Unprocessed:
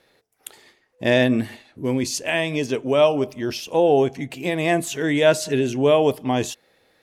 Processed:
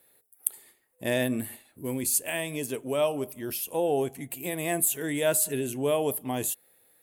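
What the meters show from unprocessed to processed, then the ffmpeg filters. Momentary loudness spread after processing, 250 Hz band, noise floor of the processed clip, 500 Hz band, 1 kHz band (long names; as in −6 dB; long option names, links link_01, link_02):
9 LU, −9.5 dB, −68 dBFS, −9.5 dB, −9.5 dB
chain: -af "aexciter=amount=14.5:drive=5.3:freq=8300,volume=-9.5dB"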